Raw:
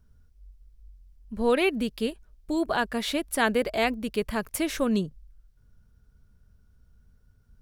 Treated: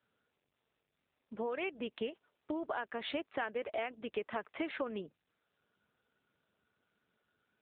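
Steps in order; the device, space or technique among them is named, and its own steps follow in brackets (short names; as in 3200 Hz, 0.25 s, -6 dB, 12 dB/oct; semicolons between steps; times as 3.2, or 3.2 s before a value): voicemail (BPF 420–3000 Hz; compressor 8:1, threshold -34 dBFS, peak gain reduction 15.5 dB; gain +1 dB; AMR-NB 7.95 kbps 8000 Hz)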